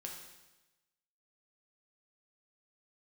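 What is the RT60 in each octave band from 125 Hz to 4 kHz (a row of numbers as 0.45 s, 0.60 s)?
1.2 s, 1.1 s, 1.1 s, 1.1 s, 1.1 s, 1.1 s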